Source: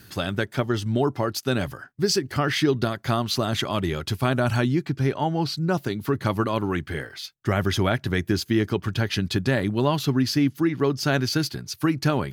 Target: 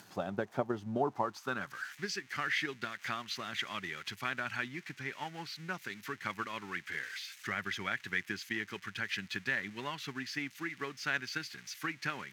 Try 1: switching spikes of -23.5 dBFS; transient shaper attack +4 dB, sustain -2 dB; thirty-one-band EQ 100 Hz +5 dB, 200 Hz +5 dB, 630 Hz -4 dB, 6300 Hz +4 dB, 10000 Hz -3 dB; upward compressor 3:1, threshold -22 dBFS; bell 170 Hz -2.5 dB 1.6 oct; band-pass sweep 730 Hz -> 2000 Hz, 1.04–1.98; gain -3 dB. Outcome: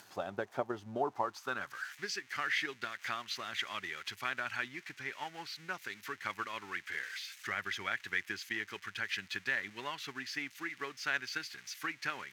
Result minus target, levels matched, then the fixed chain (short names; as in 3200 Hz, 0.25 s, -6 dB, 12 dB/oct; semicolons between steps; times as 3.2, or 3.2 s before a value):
125 Hz band -7.0 dB
switching spikes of -23.5 dBFS; transient shaper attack +4 dB, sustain -2 dB; thirty-one-band EQ 100 Hz +5 dB, 200 Hz +5 dB, 630 Hz -4 dB, 6300 Hz +4 dB, 10000 Hz -3 dB; upward compressor 3:1, threshold -22 dBFS; bell 170 Hz +7.5 dB 1.6 oct; band-pass sweep 730 Hz -> 2000 Hz, 1.04–1.98; gain -3 dB